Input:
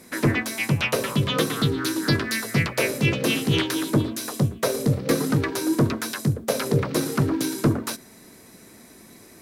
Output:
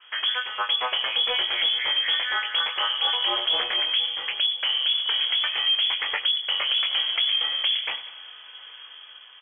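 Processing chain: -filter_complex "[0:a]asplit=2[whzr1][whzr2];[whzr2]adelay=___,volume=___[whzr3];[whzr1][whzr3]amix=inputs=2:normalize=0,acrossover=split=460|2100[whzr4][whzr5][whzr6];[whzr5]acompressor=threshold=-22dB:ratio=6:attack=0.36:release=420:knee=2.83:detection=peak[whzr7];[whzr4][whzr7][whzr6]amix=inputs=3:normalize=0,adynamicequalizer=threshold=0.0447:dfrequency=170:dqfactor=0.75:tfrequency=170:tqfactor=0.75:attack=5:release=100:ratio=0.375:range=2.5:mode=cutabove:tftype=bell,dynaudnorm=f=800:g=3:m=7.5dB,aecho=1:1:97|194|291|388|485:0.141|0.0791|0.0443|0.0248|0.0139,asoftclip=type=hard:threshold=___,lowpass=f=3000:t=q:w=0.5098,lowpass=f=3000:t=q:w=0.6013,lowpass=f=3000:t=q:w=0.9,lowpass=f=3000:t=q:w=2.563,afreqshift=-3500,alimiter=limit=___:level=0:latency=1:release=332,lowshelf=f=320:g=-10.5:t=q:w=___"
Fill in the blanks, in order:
21, -6.5dB, -13dB, -15dB, 1.5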